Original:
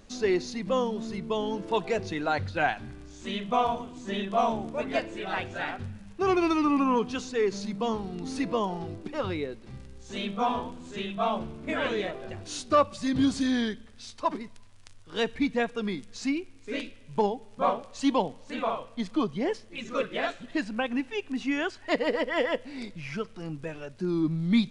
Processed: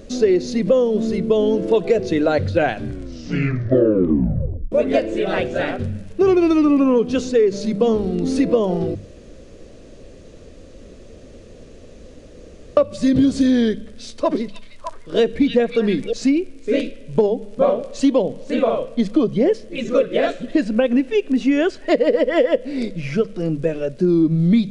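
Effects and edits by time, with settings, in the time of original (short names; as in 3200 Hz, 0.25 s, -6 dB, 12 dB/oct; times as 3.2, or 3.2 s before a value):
2.86 tape stop 1.86 s
8.95–12.77 room tone
14.06–16.13 delay with a stepping band-pass 0.304 s, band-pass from 3200 Hz, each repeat -1.4 oct, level -2.5 dB
whole clip: resonant low shelf 690 Hz +6.5 dB, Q 3; notches 50/100/150/200 Hz; compressor 5:1, threshold -20 dBFS; gain +7.5 dB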